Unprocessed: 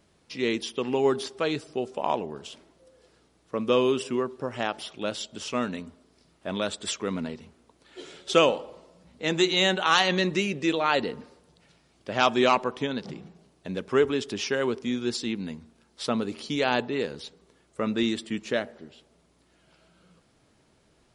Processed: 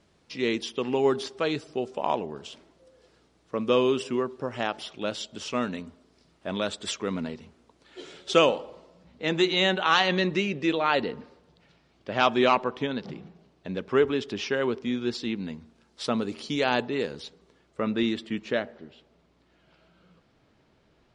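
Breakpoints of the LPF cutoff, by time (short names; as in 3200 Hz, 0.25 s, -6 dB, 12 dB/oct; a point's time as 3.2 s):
8.57 s 7400 Hz
9.26 s 4400 Hz
15.23 s 4400 Hz
16.16 s 8900 Hz
17.11 s 8900 Hz
17.86 s 4100 Hz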